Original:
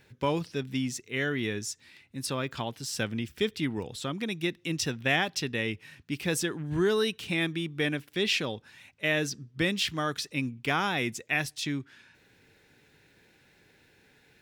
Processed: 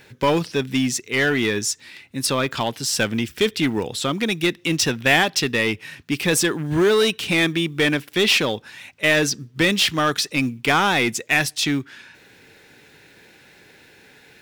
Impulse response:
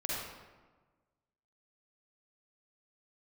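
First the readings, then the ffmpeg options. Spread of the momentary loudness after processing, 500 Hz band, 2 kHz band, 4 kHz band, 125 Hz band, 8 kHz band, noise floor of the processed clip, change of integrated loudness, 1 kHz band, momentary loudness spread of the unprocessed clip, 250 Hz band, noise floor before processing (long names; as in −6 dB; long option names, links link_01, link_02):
7 LU, +10.0 dB, +10.5 dB, +11.0 dB, +7.0 dB, +12.0 dB, −51 dBFS, +10.0 dB, +10.5 dB, 9 LU, +9.5 dB, −63 dBFS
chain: -filter_complex "[0:a]lowshelf=frequency=160:gain=-8.5,asplit=2[link_01][link_02];[link_02]aeval=exprs='0.0398*(abs(mod(val(0)/0.0398+3,4)-2)-1)':channel_layout=same,volume=-5.5dB[link_03];[link_01][link_03]amix=inputs=2:normalize=0,acrusher=bits=9:mode=log:mix=0:aa=0.000001,volume=9dB"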